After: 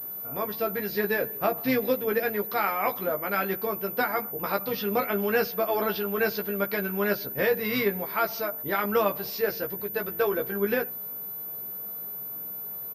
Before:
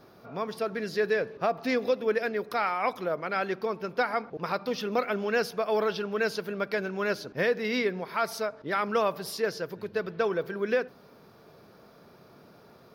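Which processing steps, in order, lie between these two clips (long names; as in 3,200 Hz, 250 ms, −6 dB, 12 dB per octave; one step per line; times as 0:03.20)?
pitch-shifted copies added −12 semitones −16 dB
double-tracking delay 15 ms −4 dB
switching amplifier with a slow clock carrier 14,000 Hz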